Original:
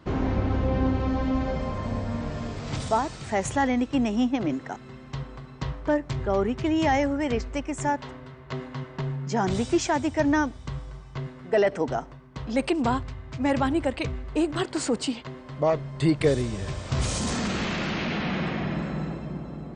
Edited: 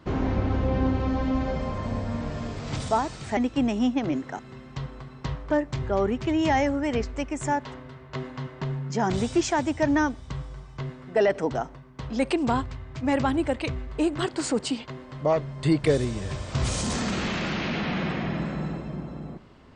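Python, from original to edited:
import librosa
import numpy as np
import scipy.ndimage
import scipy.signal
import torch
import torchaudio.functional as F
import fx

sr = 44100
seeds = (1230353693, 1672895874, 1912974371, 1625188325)

y = fx.edit(x, sr, fx.cut(start_s=3.37, length_s=0.37), tone=tone)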